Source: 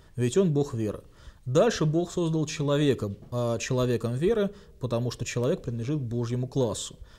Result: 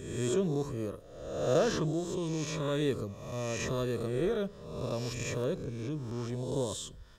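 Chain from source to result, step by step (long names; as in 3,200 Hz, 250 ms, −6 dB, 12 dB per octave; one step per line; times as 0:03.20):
peak hold with a rise ahead of every peak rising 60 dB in 1.01 s
level −8.5 dB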